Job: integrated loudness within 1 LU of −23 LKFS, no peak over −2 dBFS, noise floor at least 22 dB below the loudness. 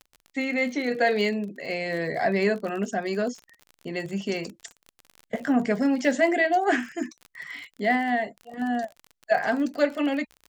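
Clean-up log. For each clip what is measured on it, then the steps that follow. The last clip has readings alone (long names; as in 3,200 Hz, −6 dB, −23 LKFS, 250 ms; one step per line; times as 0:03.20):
crackle rate 37 per second; integrated loudness −26.0 LKFS; sample peak −8.5 dBFS; target loudness −23.0 LKFS
→ click removal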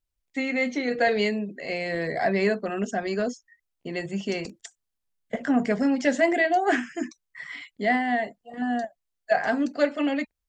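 crackle rate 0.095 per second; integrated loudness −26.0 LKFS; sample peak −8.5 dBFS; target loudness −23.0 LKFS
→ level +3 dB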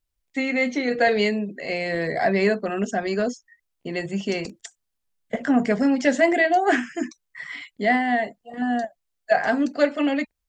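integrated loudness −23.0 LKFS; sample peak −5.5 dBFS; background noise floor −78 dBFS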